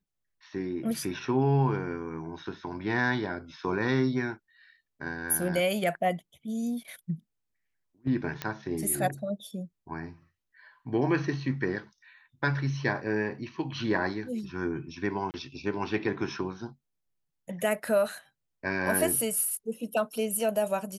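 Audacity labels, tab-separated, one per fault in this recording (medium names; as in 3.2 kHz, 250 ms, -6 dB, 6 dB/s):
8.420000	8.420000	pop -15 dBFS
15.310000	15.340000	dropout 29 ms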